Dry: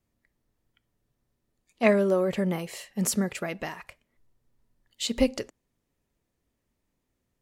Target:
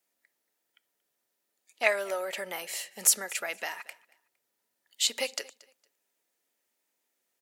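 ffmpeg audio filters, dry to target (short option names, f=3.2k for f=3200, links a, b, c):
-filter_complex "[0:a]highpass=370,lowshelf=f=480:g=-11,bandreject=f=1.1k:w=6.9,acrossover=split=580|5000[a][b][c];[a]acompressor=threshold=-50dB:ratio=4[d];[d][b][c]amix=inputs=3:normalize=0,highshelf=f=7.8k:g=7,aecho=1:1:230|460:0.075|0.0172,volume=3dB"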